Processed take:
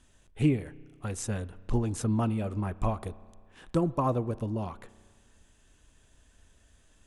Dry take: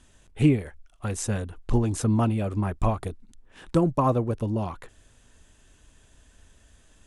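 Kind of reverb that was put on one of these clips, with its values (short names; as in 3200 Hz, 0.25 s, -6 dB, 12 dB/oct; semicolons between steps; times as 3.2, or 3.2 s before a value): spring tank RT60 1.8 s, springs 32 ms, chirp 75 ms, DRR 18.5 dB; gain -5 dB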